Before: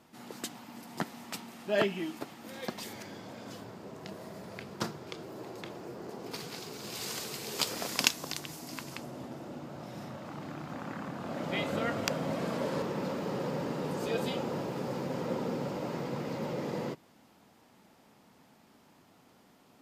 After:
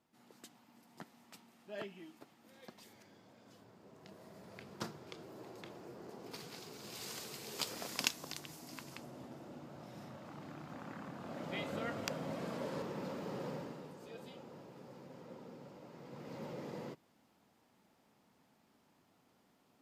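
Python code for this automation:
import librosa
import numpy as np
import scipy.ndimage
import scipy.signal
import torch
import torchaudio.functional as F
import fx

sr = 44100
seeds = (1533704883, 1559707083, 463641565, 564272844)

y = fx.gain(x, sr, db=fx.line((3.44, -17.0), (4.73, -8.0), (13.52, -8.0), (13.97, -18.5), (15.94, -18.5), (16.39, -10.0)))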